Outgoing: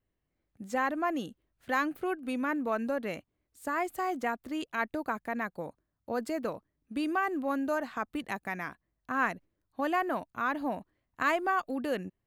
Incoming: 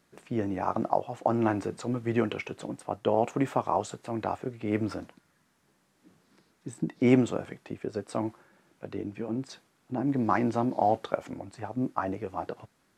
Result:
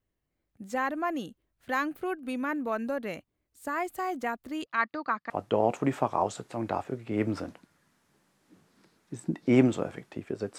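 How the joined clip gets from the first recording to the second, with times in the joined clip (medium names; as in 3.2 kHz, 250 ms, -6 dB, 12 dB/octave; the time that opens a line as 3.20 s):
outgoing
4.66–5.30 s: cabinet simulation 200–5000 Hz, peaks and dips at 400 Hz -7 dB, 650 Hz -3 dB, 1.2 kHz +10 dB, 1.9 kHz +5 dB, 4.6 kHz +9 dB
5.30 s: go over to incoming from 2.84 s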